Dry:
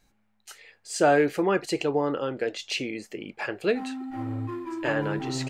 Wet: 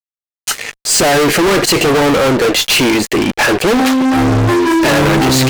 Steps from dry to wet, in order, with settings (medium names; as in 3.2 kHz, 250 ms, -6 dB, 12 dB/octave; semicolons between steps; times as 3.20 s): fuzz box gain 43 dB, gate -51 dBFS; 3.62–4.15 s: loudspeaker Doppler distortion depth 0.4 ms; trim +3.5 dB